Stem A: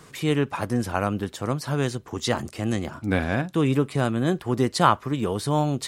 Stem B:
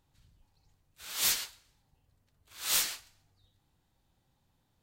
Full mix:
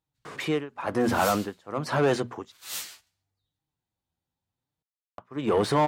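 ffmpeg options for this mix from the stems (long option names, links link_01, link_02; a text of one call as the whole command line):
ffmpeg -i stem1.wav -i stem2.wav -filter_complex "[0:a]bandreject=frequency=60:width_type=h:width=6,bandreject=frequency=120:width_type=h:width=6,bandreject=frequency=180:width_type=h:width=6,bandreject=frequency=240:width_type=h:width=6,tremolo=f=1.1:d=0.97,asplit=2[link_01][link_02];[link_02]highpass=frequency=720:poles=1,volume=29dB,asoftclip=type=tanh:threshold=-3.5dB[link_03];[link_01][link_03]amix=inputs=2:normalize=0,lowpass=frequency=1100:poles=1,volume=-6dB,adelay=250,volume=-6.5dB,asplit=3[link_04][link_05][link_06];[link_04]atrim=end=2.52,asetpts=PTS-STARTPTS,afade=type=out:start_time=2.516:duration=0.004:curve=hsin[link_07];[link_05]atrim=start=2.52:end=5.18,asetpts=PTS-STARTPTS,volume=0[link_08];[link_06]atrim=start=5.18,asetpts=PTS-STARTPTS,afade=type=in:duration=0.004:curve=hsin[link_09];[link_07][link_08][link_09]concat=n=3:v=0:a=1[link_10];[1:a]flanger=delay=6.3:depth=6.1:regen=33:speed=0.83:shape=sinusoidal,volume=-3dB[link_11];[link_10][link_11]amix=inputs=2:normalize=0,highpass=44,agate=range=-6dB:threshold=-51dB:ratio=16:detection=peak" out.wav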